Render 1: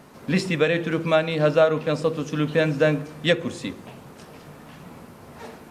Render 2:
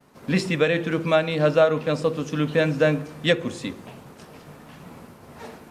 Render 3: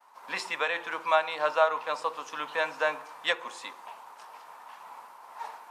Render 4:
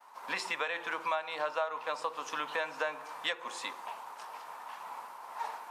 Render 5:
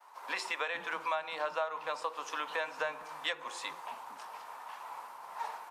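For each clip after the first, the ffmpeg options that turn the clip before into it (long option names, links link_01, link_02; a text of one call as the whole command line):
ffmpeg -i in.wav -af "agate=range=-33dB:threshold=-42dB:ratio=3:detection=peak" out.wav
ffmpeg -i in.wav -af "highpass=frequency=930:width_type=q:width=4.9,volume=-5.5dB" out.wav
ffmpeg -i in.wav -af "acompressor=threshold=-34dB:ratio=4,volume=2.5dB" out.wav
ffmpeg -i in.wav -filter_complex "[0:a]acrossover=split=240[link_01][link_02];[link_01]adelay=460[link_03];[link_03][link_02]amix=inputs=2:normalize=0,volume=-1dB" out.wav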